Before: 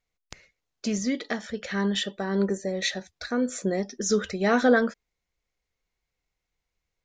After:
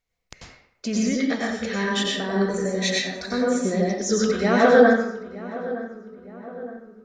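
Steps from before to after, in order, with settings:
0:01.33–0:03.40: high-shelf EQ 7,000 Hz +7 dB
feedback echo with a low-pass in the loop 916 ms, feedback 53%, low-pass 1,500 Hz, level −15 dB
convolution reverb RT60 0.75 s, pre-delay 87 ms, DRR −3.5 dB

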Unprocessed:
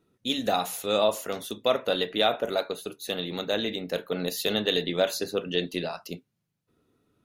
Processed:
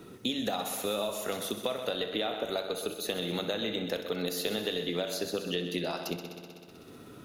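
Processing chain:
downward compressor, threshold −29 dBFS, peak gain reduction 11 dB
echo machine with several playback heads 63 ms, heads first and second, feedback 59%, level −13 dB
multiband upward and downward compressor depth 70%

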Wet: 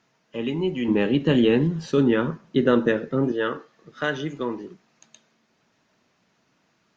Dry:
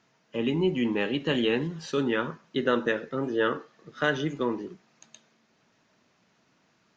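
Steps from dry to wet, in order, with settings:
0:00.88–0:03.32: low-shelf EQ 480 Hz +11.5 dB
Opus 64 kbit/s 48,000 Hz

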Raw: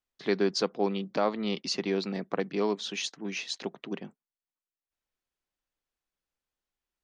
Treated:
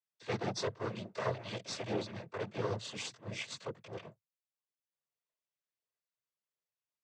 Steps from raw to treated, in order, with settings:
lower of the sound and its delayed copy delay 1.9 ms
multi-voice chorus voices 4, 0.78 Hz, delay 20 ms, depth 1 ms
cochlear-implant simulation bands 16
level −3 dB

